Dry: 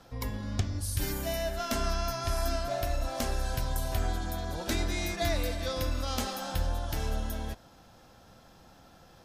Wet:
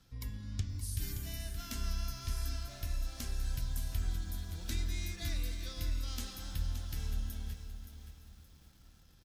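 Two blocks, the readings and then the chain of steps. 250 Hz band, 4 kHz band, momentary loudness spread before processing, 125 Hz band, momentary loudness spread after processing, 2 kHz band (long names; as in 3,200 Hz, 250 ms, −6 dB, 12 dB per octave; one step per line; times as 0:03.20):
−11.0 dB, −7.5 dB, 4 LU, −4.5 dB, 8 LU, −11.5 dB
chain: guitar amp tone stack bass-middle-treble 6-0-2
on a send: repeating echo 914 ms, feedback 44%, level −22 dB
on the sum: feedback echo at a low word length 572 ms, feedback 35%, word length 11 bits, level −9.5 dB
level +7.5 dB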